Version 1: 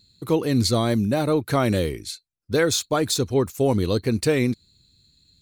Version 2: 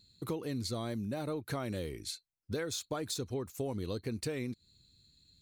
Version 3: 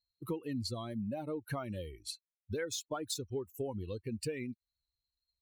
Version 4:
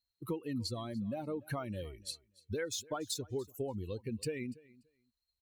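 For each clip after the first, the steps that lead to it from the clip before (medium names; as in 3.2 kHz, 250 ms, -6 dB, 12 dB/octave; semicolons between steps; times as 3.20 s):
compression 6:1, threshold -28 dBFS, peak gain reduction 12.5 dB; trim -6 dB
expander on every frequency bin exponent 2; trim +2.5 dB
feedback delay 290 ms, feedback 17%, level -22 dB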